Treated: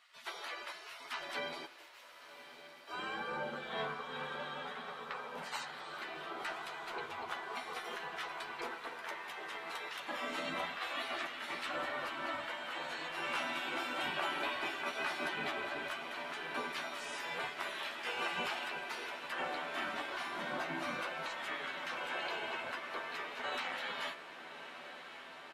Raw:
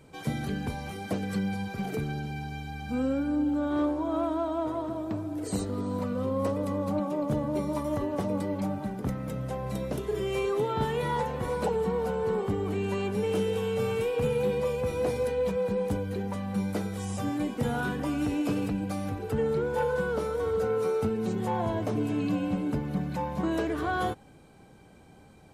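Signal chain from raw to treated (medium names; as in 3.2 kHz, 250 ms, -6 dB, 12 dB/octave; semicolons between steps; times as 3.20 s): 1.65–2.88 s: pre-emphasis filter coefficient 0.9; spectral gate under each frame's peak -25 dB weak; three-band isolator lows -22 dB, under 170 Hz, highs -19 dB, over 3.9 kHz; doubling 12 ms -5.5 dB; de-hum 67.08 Hz, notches 37; on a send: echo that smears into a reverb 1158 ms, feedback 76%, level -12.5 dB; on the sum: trim +8 dB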